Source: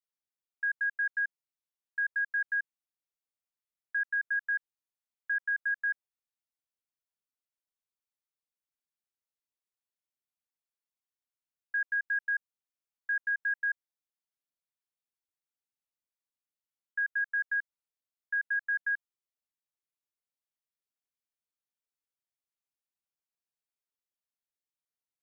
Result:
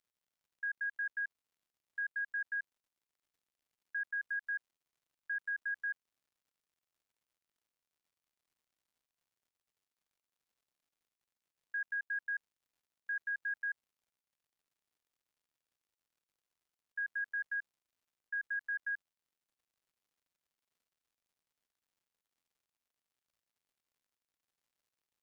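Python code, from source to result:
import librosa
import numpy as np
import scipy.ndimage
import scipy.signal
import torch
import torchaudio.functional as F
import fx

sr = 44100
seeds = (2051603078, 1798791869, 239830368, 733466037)

y = scipy.signal.sosfilt(scipy.signal.butter(2, 1400.0, 'highpass', fs=sr, output='sos'), x)
y = fx.dmg_crackle(y, sr, seeds[0], per_s=180.0, level_db=-66.0)
y = y * 10.0 ** (-5.0 / 20.0)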